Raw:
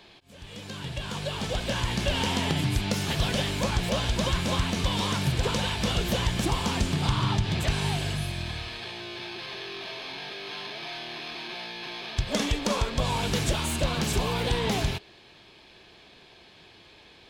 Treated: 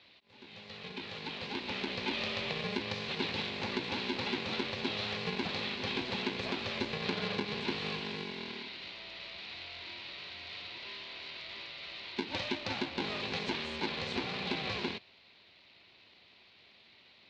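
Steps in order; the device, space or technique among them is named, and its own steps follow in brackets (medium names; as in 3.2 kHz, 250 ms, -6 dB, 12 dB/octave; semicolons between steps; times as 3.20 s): ring modulator pedal into a guitar cabinet (polarity switched at an audio rate 310 Hz; cabinet simulation 98–4500 Hz, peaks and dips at 140 Hz -6 dB, 470 Hz -4 dB, 710 Hz -4 dB, 1.3 kHz -7 dB, 2.4 kHz +6 dB, 4.1 kHz +7 dB); trim -9 dB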